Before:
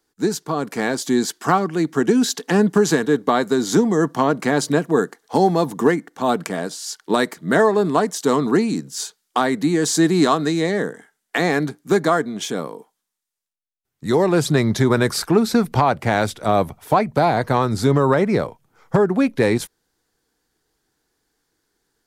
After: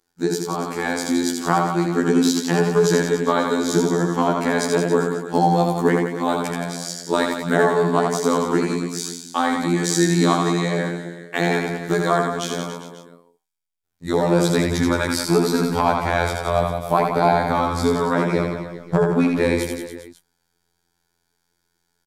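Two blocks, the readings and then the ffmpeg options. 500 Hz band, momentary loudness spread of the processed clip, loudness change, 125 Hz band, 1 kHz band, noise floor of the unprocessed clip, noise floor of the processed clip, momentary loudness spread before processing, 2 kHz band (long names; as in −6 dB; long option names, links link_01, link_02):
−1.0 dB, 9 LU, −1.0 dB, −0.5 dB, 0.0 dB, −78 dBFS, −73 dBFS, 8 LU, −0.5 dB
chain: -af "afftfilt=real='hypot(re,im)*cos(PI*b)':imag='0':win_size=2048:overlap=0.75,aecho=1:1:80|172|277.8|399.5|539.4:0.631|0.398|0.251|0.158|0.1,volume=1dB"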